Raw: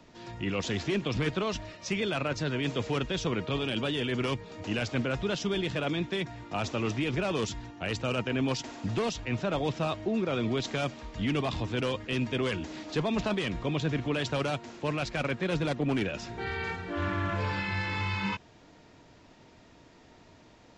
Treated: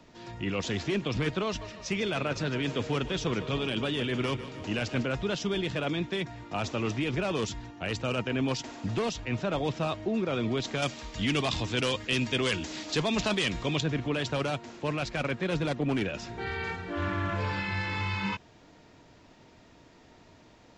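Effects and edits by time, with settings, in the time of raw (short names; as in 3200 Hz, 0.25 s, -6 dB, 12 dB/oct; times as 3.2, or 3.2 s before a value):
1.46–5.06 split-band echo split 300 Hz, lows 0.249 s, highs 0.151 s, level -13 dB
10.82–13.81 high shelf 2700 Hz +12 dB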